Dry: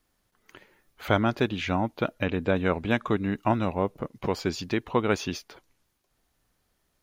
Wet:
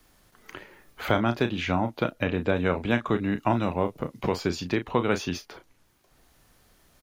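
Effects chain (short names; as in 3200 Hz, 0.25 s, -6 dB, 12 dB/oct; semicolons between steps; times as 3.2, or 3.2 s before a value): doubler 34 ms -9.5 dB; three-band squash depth 40%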